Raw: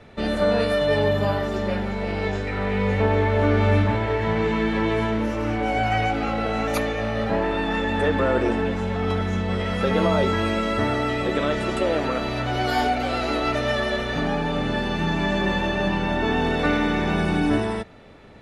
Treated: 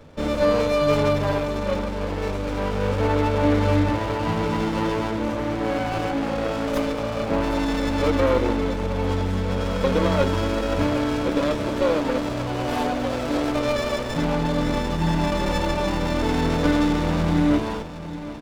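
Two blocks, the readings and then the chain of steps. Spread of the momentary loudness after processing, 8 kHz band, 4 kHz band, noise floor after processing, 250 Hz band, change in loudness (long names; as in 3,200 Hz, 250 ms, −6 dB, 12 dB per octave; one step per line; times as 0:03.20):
6 LU, +4.0 dB, −1.5 dB, −28 dBFS, +1.0 dB, 0.0 dB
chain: EQ curve with evenly spaced ripples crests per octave 1.1, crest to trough 10 dB
repeating echo 763 ms, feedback 55%, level −14 dB
windowed peak hold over 17 samples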